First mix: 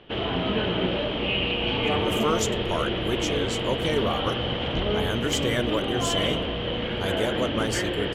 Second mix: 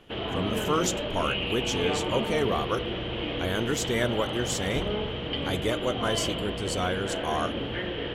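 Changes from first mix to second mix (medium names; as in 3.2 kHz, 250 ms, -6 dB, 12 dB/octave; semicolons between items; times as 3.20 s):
speech: entry -1.55 s; background -4.5 dB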